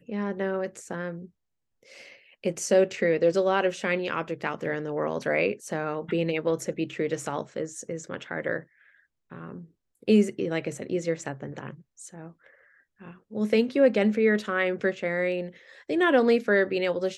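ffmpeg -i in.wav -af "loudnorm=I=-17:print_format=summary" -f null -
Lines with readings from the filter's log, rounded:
Input Integrated:    -26.2 LUFS
Input True Peak:      -9.3 dBTP
Input LRA:             5.2 LU
Input Threshold:     -37.2 LUFS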